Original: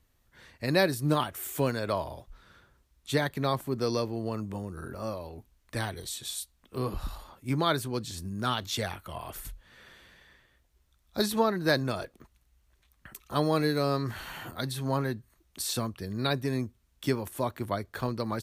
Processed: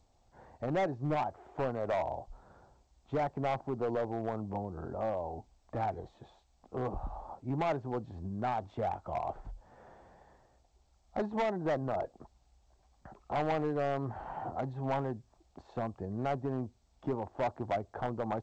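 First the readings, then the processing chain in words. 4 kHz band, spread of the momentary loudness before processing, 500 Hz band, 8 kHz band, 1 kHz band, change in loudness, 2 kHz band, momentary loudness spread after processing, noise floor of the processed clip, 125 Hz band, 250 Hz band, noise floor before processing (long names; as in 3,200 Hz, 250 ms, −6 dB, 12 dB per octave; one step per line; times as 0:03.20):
−19.0 dB, 14 LU, −3.0 dB, below −25 dB, −1.0 dB, −4.5 dB, −9.5 dB, 10 LU, −69 dBFS, −6.5 dB, −6.0 dB, −70 dBFS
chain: downward compressor 1.5 to 1, threshold −41 dBFS, peak gain reduction 8 dB
low-pass with resonance 780 Hz, resonance Q 4.9
hard clipping −27 dBFS, distortion −10 dB
G.722 64 kbit/s 16,000 Hz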